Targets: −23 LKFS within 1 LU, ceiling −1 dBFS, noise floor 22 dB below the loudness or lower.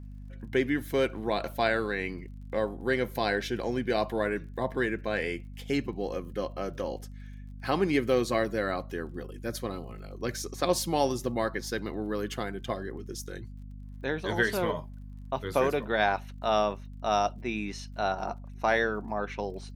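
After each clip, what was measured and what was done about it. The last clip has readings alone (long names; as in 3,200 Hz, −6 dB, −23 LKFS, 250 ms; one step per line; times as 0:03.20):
crackle rate 37 per second; mains hum 50 Hz; hum harmonics up to 250 Hz; level of the hum −40 dBFS; integrated loudness −30.5 LKFS; sample peak −11.0 dBFS; target loudness −23.0 LKFS
→ click removal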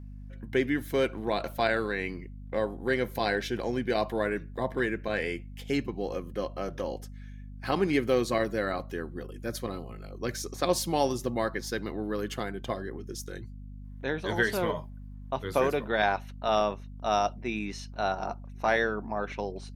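crackle rate 0.15 per second; mains hum 50 Hz; hum harmonics up to 250 Hz; level of the hum −40 dBFS
→ mains-hum notches 50/100/150/200/250 Hz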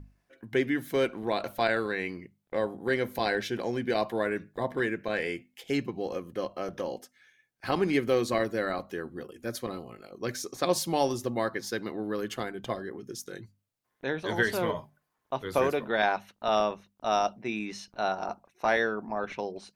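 mains hum none found; integrated loudness −30.5 LKFS; sample peak −11.0 dBFS; target loudness −23.0 LKFS
→ level +7.5 dB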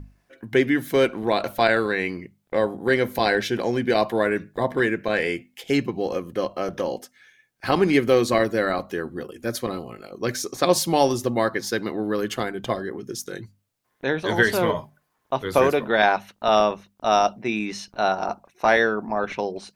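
integrated loudness −23.0 LKFS; sample peak −3.5 dBFS; background noise floor −70 dBFS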